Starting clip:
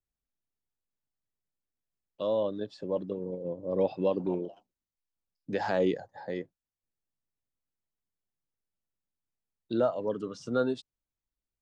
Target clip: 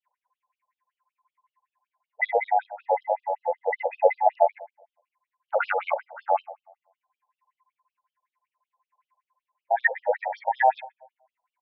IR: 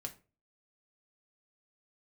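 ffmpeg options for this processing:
-filter_complex "[0:a]afftfilt=real='real(if(between(b,1,1008),(2*floor((b-1)/48)+1)*48-b,b),0)':imag='imag(if(between(b,1,1008),(2*floor((b-1)/48)+1)*48-b,b),0)*if(between(b,1,1008),-1,1)':win_size=2048:overlap=0.75,asplit=2[link_01][link_02];[link_02]alimiter=level_in=1dB:limit=-24dB:level=0:latency=1:release=15,volume=-1dB,volume=2dB[link_03];[link_01][link_03]amix=inputs=2:normalize=0,highshelf=frequency=3100:width_type=q:width=3:gain=-12,aphaser=in_gain=1:out_gain=1:delay=1.5:decay=0.47:speed=0.22:type=triangular,asplit=2[link_04][link_05];[link_05]adelay=106,lowpass=frequency=940:poles=1,volume=-16dB,asplit=2[link_06][link_07];[link_07]adelay=106,lowpass=frequency=940:poles=1,volume=0.54,asplit=2[link_08][link_09];[link_09]adelay=106,lowpass=frequency=940:poles=1,volume=0.54,asplit=2[link_10][link_11];[link_11]adelay=106,lowpass=frequency=940:poles=1,volume=0.54,asplit=2[link_12][link_13];[link_13]adelay=106,lowpass=frequency=940:poles=1,volume=0.54[link_14];[link_04][link_06][link_08][link_10][link_12][link_14]amix=inputs=6:normalize=0,afftfilt=real='re*between(b*sr/1024,640*pow(4100/640,0.5+0.5*sin(2*PI*5.3*pts/sr))/1.41,640*pow(4100/640,0.5+0.5*sin(2*PI*5.3*pts/sr))*1.41)':imag='im*between(b*sr/1024,640*pow(4100/640,0.5+0.5*sin(2*PI*5.3*pts/sr))/1.41,640*pow(4100/640,0.5+0.5*sin(2*PI*5.3*pts/sr))*1.41)':win_size=1024:overlap=0.75,volume=7dB"

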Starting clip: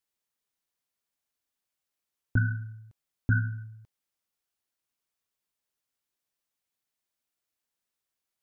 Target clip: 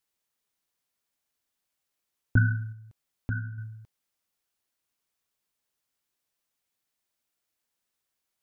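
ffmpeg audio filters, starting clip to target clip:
ffmpeg -i in.wav -filter_complex "[0:a]asplit=3[link_01][link_02][link_03];[link_01]afade=type=out:start_time=2.72:duration=0.02[link_04];[link_02]acompressor=threshold=-49dB:ratio=1.5,afade=type=in:start_time=2.72:duration=0.02,afade=type=out:start_time=3.57:duration=0.02[link_05];[link_03]afade=type=in:start_time=3.57:duration=0.02[link_06];[link_04][link_05][link_06]amix=inputs=3:normalize=0,volume=3.5dB" out.wav

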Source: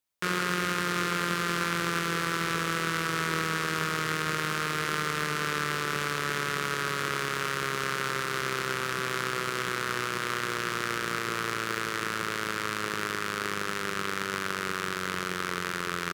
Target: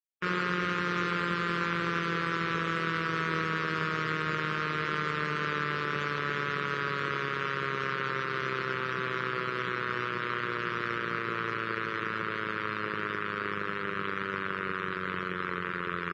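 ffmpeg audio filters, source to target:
ffmpeg -i in.wav -af "asoftclip=type=tanh:threshold=-14dB,afftdn=noise_reduction=29:noise_floor=-39" out.wav

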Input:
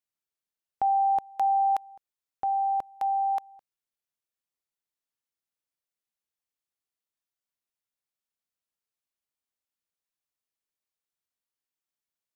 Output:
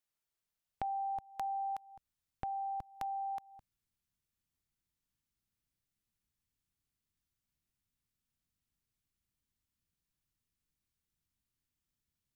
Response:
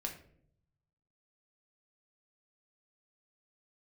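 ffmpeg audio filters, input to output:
-af "asubboost=boost=11.5:cutoff=170,acompressor=threshold=-42dB:ratio=3,volume=1dB"

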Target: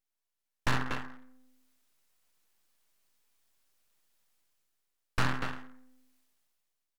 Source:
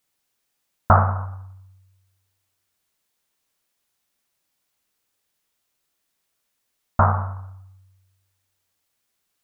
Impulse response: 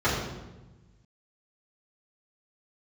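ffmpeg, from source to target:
-af "dynaudnorm=framelen=160:gausssize=11:maxgain=14dB,aecho=1:1:87|324:0.251|0.335,aeval=exprs='(tanh(5.62*val(0)+0.7)-tanh(0.7))/5.62':channel_layout=same,aeval=exprs='abs(val(0))':channel_layout=same,asetrate=59535,aresample=44100,volume=-6.5dB"

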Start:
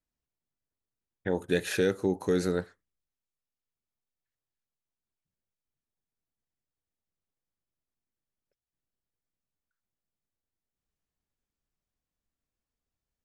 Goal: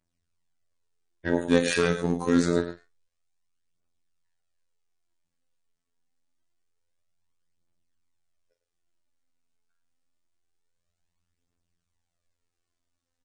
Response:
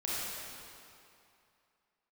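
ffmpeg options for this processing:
-filter_complex "[0:a]aphaser=in_gain=1:out_gain=1:delay=4.7:decay=0.59:speed=0.26:type=triangular,aecho=1:1:105:0.282,volume=19dB,asoftclip=hard,volume=-19dB,asplit=2[link_01][link_02];[link_02]adelay=41,volume=-10.5dB[link_03];[link_01][link_03]amix=inputs=2:normalize=0,afftfilt=real='hypot(re,im)*cos(PI*b)':imag='0':win_size=2048:overlap=0.75,volume=7.5dB" -ar 22050 -c:a libmp3lame -b:a 40k

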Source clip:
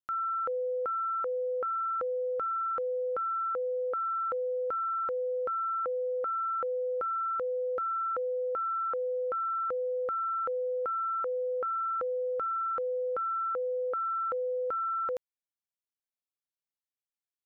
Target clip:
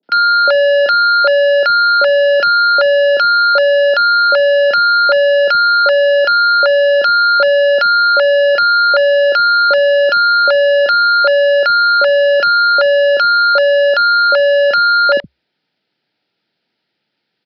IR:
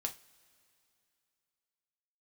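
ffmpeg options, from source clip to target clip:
-filter_complex "[0:a]highpass=74,lowshelf=frequency=470:gain=9,apsyclip=25.5dB,afreqshift=67,aresample=11025,asoftclip=type=tanh:threshold=-12.5dB,aresample=44100,asuperstop=centerf=1100:order=4:qfactor=3.9,acrossover=split=200|660[link_01][link_02][link_03];[link_03]adelay=30[link_04];[link_01]adelay=70[link_05];[link_05][link_02][link_04]amix=inputs=3:normalize=0,volume=3.5dB"

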